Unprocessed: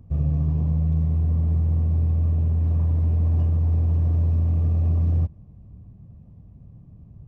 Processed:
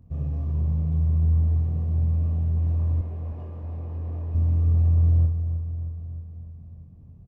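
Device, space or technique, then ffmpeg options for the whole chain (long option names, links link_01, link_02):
slapback doubling: -filter_complex "[0:a]asplit=3[link_01][link_02][link_03];[link_02]adelay=23,volume=-4dB[link_04];[link_03]adelay=62,volume=-8dB[link_05];[link_01][link_04][link_05]amix=inputs=3:normalize=0,asettb=1/sr,asplit=3[link_06][link_07][link_08];[link_06]atrim=end=3.014[link_09];[link_07]atrim=start=3.01:end=4.35,asetpts=PTS-STARTPTS,afade=type=in:duration=0.004:curve=qsin,afade=type=out:start_time=1.336:duration=0.004:curve=qsin,bass=frequency=250:gain=-11,treble=frequency=4000:gain=-12[link_10];[link_08]atrim=start=4.346[link_11];[link_09][link_10]acrossfade=duration=0.004:curve1=hsin:curve2=qsin[link_12];[link_12][link_11]acrossfade=duration=0.004:curve1=qsin:curve2=hsin,aecho=1:1:312|624|936|1248|1560|1872|2184:0.316|0.187|0.11|0.0649|0.0383|0.0226|0.0133,volume=-6dB"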